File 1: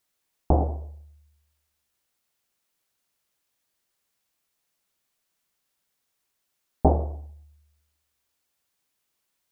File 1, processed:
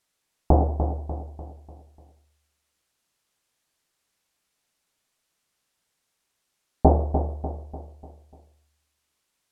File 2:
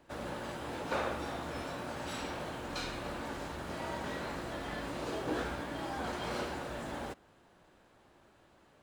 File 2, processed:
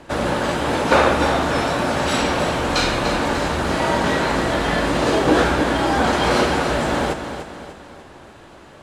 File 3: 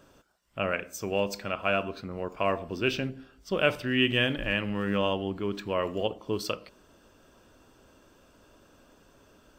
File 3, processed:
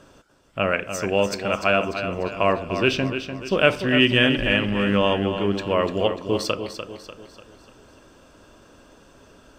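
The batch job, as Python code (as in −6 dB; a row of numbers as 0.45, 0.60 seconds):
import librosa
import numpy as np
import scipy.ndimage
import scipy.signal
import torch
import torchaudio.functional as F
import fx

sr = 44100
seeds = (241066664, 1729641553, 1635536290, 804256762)

p1 = scipy.signal.sosfilt(scipy.signal.butter(2, 11000.0, 'lowpass', fs=sr, output='sos'), x)
p2 = p1 + fx.echo_feedback(p1, sr, ms=296, feedback_pct=45, wet_db=-9.0, dry=0)
y = librosa.util.normalize(p2) * 10.0 ** (-1.5 / 20.0)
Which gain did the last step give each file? +2.5, +19.5, +7.0 decibels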